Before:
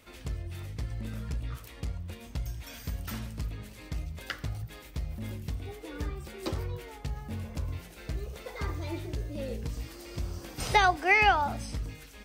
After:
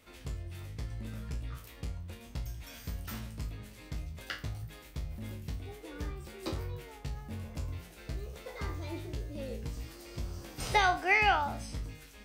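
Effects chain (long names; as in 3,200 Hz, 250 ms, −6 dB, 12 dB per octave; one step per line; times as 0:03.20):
peak hold with a decay on every bin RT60 0.31 s
level −4.5 dB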